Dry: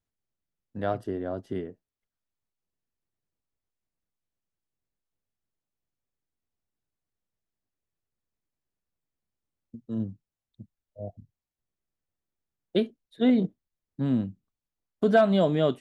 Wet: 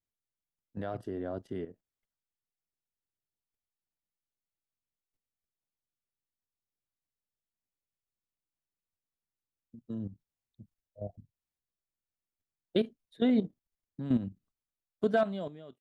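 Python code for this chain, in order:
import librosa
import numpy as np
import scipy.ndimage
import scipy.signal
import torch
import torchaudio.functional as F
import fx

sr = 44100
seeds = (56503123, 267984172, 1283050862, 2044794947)

y = fx.fade_out_tail(x, sr, length_s=1.04)
y = fx.level_steps(y, sr, step_db=12)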